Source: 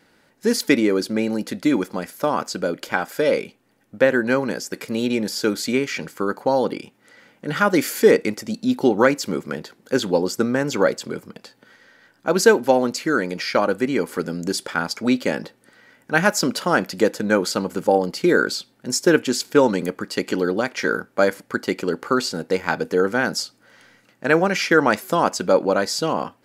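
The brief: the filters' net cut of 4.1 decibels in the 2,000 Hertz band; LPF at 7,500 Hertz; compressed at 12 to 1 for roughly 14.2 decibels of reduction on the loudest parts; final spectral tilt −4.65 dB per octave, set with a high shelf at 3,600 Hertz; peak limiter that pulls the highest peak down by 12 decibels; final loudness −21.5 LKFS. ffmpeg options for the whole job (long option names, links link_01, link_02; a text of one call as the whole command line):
ffmpeg -i in.wav -af "lowpass=7500,equalizer=frequency=2000:width_type=o:gain=-4.5,highshelf=frequency=3600:gain=-6,acompressor=threshold=-23dB:ratio=12,volume=10.5dB,alimiter=limit=-9.5dB:level=0:latency=1" out.wav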